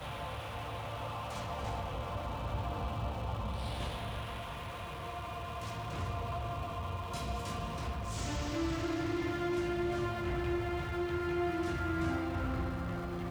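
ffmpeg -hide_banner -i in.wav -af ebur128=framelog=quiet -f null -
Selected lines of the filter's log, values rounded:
Integrated loudness:
  I:         -37.1 LUFS
  Threshold: -47.1 LUFS
Loudness range:
  LRA:         5.2 LU
  Threshold: -57.1 LUFS
  LRA low:   -39.8 LUFS
  LRA high:  -34.6 LUFS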